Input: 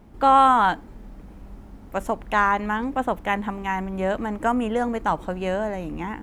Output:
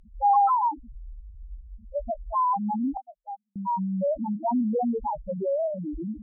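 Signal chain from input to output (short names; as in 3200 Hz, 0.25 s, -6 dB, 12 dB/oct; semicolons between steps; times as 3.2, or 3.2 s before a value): loudest bins only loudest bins 1; treble ducked by the level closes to 2300 Hz, closed at -23.5 dBFS; in parallel at -2 dB: limiter -28.5 dBFS, peak gain reduction 11.5 dB; 2.97–3.56 on the sum: inverse Chebyshev high-pass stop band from 390 Hz, stop band 50 dB; gain +1.5 dB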